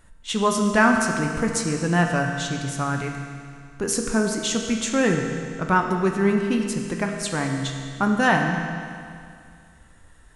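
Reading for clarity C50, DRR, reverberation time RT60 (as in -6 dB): 3.5 dB, 2.0 dB, 2.3 s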